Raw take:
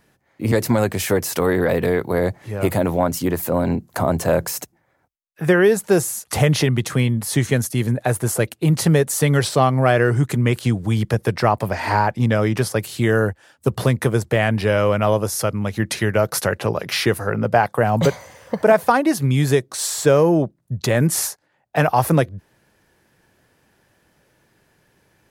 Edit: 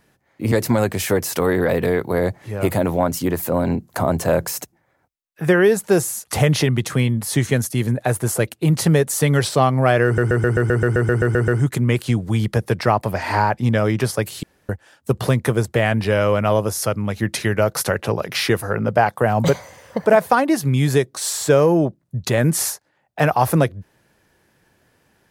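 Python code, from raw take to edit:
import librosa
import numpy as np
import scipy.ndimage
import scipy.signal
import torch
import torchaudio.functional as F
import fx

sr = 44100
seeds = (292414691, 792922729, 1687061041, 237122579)

y = fx.edit(x, sr, fx.stutter(start_s=10.05, slice_s=0.13, count=12),
    fx.room_tone_fill(start_s=13.0, length_s=0.26), tone=tone)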